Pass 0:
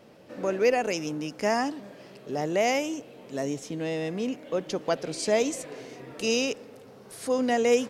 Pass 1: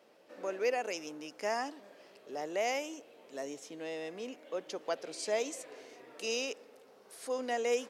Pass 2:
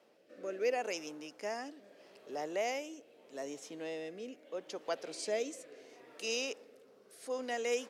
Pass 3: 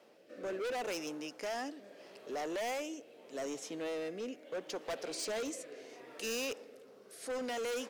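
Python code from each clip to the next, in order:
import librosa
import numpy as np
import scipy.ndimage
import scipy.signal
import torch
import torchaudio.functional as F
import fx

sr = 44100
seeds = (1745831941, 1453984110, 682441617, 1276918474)

y1 = scipy.signal.sosfilt(scipy.signal.butter(2, 390.0, 'highpass', fs=sr, output='sos'), x)
y1 = y1 * 10.0 ** (-7.5 / 20.0)
y2 = fx.rotary(y1, sr, hz=0.75)
y3 = np.clip(y2, -10.0 ** (-39.5 / 20.0), 10.0 ** (-39.5 / 20.0))
y3 = y3 * 10.0 ** (4.5 / 20.0)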